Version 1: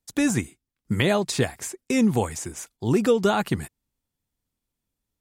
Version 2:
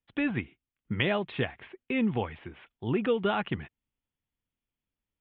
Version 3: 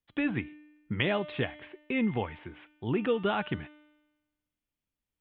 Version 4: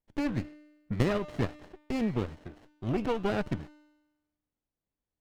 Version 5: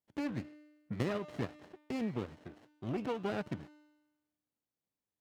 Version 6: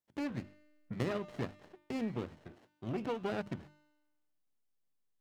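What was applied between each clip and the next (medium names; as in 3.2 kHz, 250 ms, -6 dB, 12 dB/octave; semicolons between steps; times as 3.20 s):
steep low-pass 3.3 kHz 72 dB/octave; treble shelf 2.2 kHz +9.5 dB; trim -7.5 dB
feedback comb 300 Hz, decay 1.1 s, mix 70%; trim +9 dB
sliding maximum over 33 samples
high-pass 110 Hz 12 dB/octave; in parallel at -1.5 dB: compression, threshold -36 dBFS, peak gain reduction 13.5 dB; on the sum: trim -8.5 dB
hum notches 50/100/150/200/250/300/350 Hz; in parallel at -11 dB: hysteresis with a dead band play -38 dBFS; on the sum: trim -2 dB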